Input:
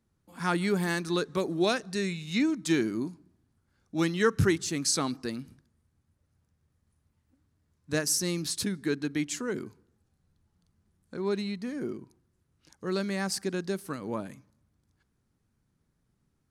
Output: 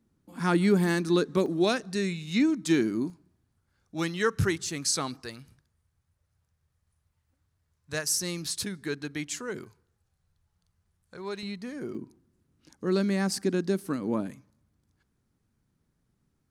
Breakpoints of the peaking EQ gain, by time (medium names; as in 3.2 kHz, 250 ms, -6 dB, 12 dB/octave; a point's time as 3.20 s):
peaking EQ 260 Hz 1.2 oct
+9 dB
from 1.46 s +3 dB
from 3.10 s -5.5 dB
from 5.20 s -13 dB
from 8.17 s -6.5 dB
from 9.64 s -14 dB
from 11.43 s -3.5 dB
from 11.95 s +8.5 dB
from 14.30 s +1 dB